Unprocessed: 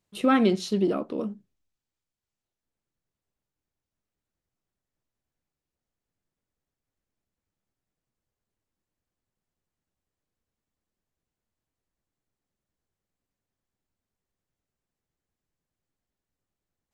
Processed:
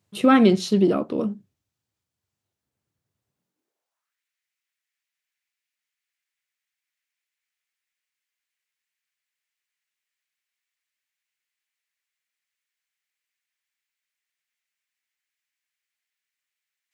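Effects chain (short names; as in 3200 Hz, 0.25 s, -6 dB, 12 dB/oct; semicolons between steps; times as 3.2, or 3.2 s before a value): high-pass sweep 94 Hz -> 2100 Hz, 3.25–4.22; gain +4.5 dB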